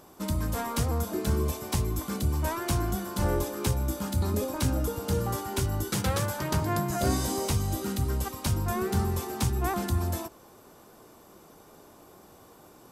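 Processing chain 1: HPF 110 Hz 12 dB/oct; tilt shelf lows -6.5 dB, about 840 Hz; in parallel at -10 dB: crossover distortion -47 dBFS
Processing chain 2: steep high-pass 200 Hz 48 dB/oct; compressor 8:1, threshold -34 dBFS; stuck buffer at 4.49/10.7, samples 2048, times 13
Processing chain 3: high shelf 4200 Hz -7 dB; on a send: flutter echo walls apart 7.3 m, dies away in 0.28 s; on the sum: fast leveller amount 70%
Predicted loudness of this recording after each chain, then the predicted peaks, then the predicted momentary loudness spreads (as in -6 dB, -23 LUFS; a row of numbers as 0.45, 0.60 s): -27.5, -38.0, -26.0 LUFS; -10.0, -21.0, -12.0 dBFS; 6, 16, 7 LU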